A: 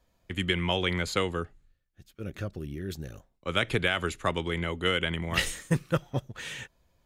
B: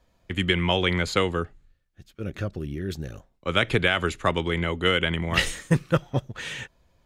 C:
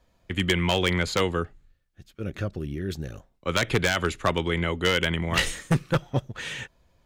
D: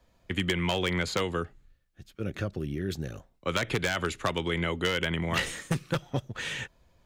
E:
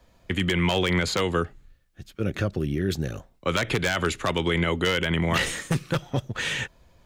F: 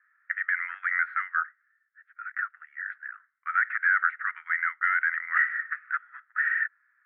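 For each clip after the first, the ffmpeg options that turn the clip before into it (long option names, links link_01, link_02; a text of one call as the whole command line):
ffmpeg -i in.wav -af "highshelf=frequency=9300:gain=-9.5,volume=5dB" out.wav
ffmpeg -i in.wav -af "aeval=exprs='0.224*(abs(mod(val(0)/0.224+3,4)-2)-1)':channel_layout=same" out.wav
ffmpeg -i in.wav -filter_complex "[0:a]acrossover=split=84|2500[link_01][link_02][link_03];[link_01]acompressor=threshold=-49dB:ratio=4[link_04];[link_02]acompressor=threshold=-26dB:ratio=4[link_05];[link_03]acompressor=threshold=-34dB:ratio=4[link_06];[link_04][link_05][link_06]amix=inputs=3:normalize=0" out.wav
ffmpeg -i in.wav -af "alimiter=limit=-19.5dB:level=0:latency=1:release=24,volume=6.5dB" out.wav
ffmpeg -i in.wav -af "asuperpass=centerf=1600:order=8:qfactor=2.4,volume=7dB" out.wav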